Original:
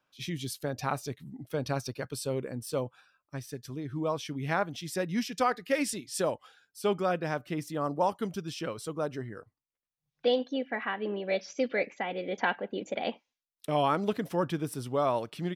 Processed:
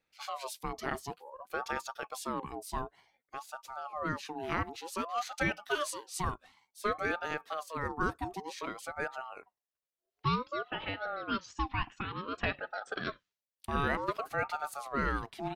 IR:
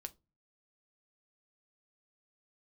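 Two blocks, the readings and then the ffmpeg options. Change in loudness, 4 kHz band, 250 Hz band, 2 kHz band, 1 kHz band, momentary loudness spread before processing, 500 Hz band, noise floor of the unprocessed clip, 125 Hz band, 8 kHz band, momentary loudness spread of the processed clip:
-4.0 dB, -3.5 dB, -6.5 dB, +0.5 dB, -1.5 dB, 11 LU, -8.5 dB, under -85 dBFS, -5.0 dB, -4.5 dB, 10 LU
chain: -af "bandreject=f=5.9k:w=27,aeval=exprs='val(0)*sin(2*PI*790*n/s+790*0.35/0.55*sin(2*PI*0.55*n/s))':c=same,volume=-1.5dB"

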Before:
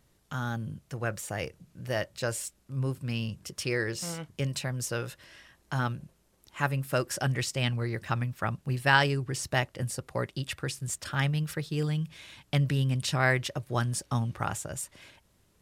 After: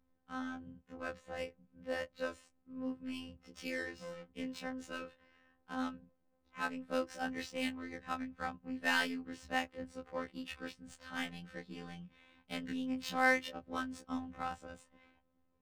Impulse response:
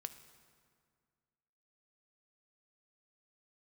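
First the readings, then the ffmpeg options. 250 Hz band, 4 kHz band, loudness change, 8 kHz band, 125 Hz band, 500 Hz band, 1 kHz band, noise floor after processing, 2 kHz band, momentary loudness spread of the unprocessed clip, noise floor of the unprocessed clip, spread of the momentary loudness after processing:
-5.5 dB, -9.5 dB, -9.0 dB, -18.0 dB, -27.5 dB, -8.0 dB, -7.0 dB, -76 dBFS, -6.5 dB, 10 LU, -67 dBFS, 16 LU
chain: -af "adynamicsmooth=sensitivity=5.5:basefreq=1.4k,afftfilt=real='hypot(re,im)*cos(PI*b)':imag='0':win_size=2048:overlap=0.75,afftfilt=real='re*1.73*eq(mod(b,3),0)':imag='im*1.73*eq(mod(b,3),0)':win_size=2048:overlap=0.75,volume=-1.5dB"

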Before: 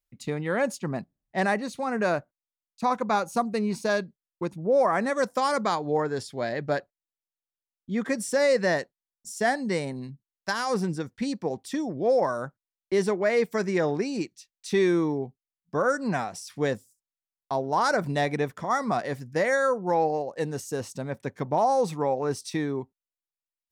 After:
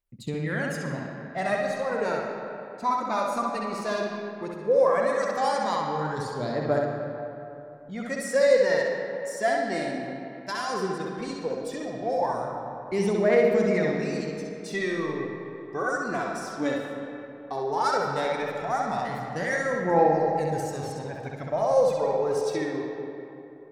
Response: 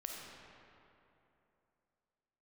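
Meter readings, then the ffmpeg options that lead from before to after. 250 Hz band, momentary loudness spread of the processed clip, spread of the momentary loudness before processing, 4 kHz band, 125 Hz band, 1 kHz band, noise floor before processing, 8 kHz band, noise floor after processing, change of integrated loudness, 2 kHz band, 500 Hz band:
-2.0 dB, 14 LU, 11 LU, -1.0 dB, -0.5 dB, +0.5 dB, under -85 dBFS, -2.5 dB, -42 dBFS, 0.0 dB, -0.5 dB, +1.5 dB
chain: -filter_complex "[0:a]aphaser=in_gain=1:out_gain=1:delay=3.5:decay=0.63:speed=0.15:type=triangular,asplit=2[a][b];[1:a]atrim=start_sample=2205,lowpass=7.1k,adelay=65[c];[b][c]afir=irnorm=-1:irlink=0,volume=2dB[d];[a][d]amix=inputs=2:normalize=0,volume=-6dB"

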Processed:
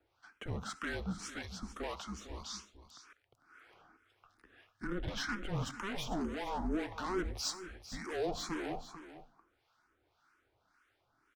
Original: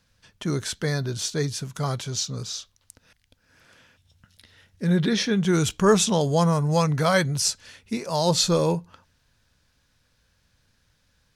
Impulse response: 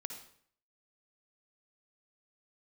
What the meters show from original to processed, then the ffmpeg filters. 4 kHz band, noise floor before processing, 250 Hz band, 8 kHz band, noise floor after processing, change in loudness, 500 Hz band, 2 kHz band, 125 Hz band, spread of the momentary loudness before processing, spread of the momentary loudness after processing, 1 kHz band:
-16.0 dB, -68 dBFS, -15.5 dB, -19.0 dB, -77 dBFS, -16.0 dB, -17.0 dB, -11.0 dB, -20.0 dB, 11 LU, 13 LU, -13.5 dB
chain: -filter_complex "[0:a]highpass=77,acrossover=split=400 2200:gain=0.141 1 0.141[a][b][c];[a][b][c]amix=inputs=3:normalize=0,alimiter=limit=-19dB:level=0:latency=1:release=61,afreqshift=-190,asoftclip=type=tanh:threshold=-33.5dB,acrossover=split=900[d][e];[d]aeval=exprs='val(0)*(1-0.7/2+0.7/2*cos(2*PI*1.8*n/s))':c=same[f];[e]aeval=exprs='val(0)*(1-0.7/2-0.7/2*cos(2*PI*1.8*n/s))':c=same[g];[f][g]amix=inputs=2:normalize=0,aecho=1:1:449:0.224,asplit=2[h][i];[1:a]atrim=start_sample=2205,afade=t=out:st=0.21:d=0.01,atrim=end_sample=9702[j];[i][j]afir=irnorm=-1:irlink=0,volume=-6.5dB[k];[h][k]amix=inputs=2:normalize=0,asplit=2[l][m];[m]afreqshift=2.2[n];[l][n]amix=inputs=2:normalize=1,volume=3.5dB"

